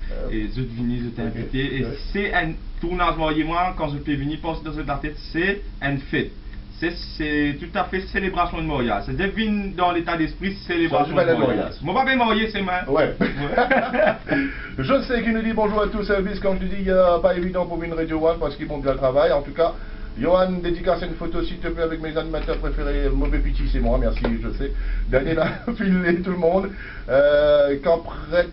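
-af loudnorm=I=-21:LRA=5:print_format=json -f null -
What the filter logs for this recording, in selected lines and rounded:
"input_i" : "-22.0",
"input_tp" : "-4.2",
"input_lra" : "5.2",
"input_thresh" : "-32.0",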